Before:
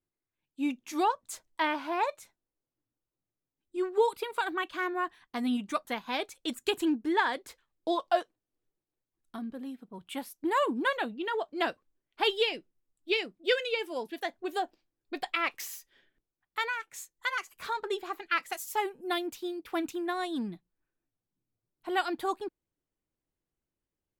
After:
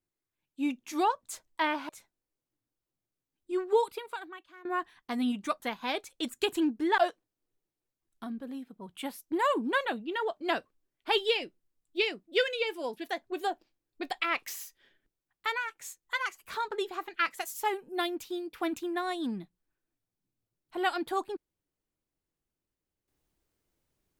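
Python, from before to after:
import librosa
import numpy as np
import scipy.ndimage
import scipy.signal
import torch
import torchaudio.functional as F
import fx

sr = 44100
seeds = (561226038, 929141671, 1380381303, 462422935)

y = fx.edit(x, sr, fx.cut(start_s=1.89, length_s=0.25),
    fx.fade_out_to(start_s=4.04, length_s=0.86, curve='qua', floor_db=-21.0),
    fx.cut(start_s=7.23, length_s=0.87), tone=tone)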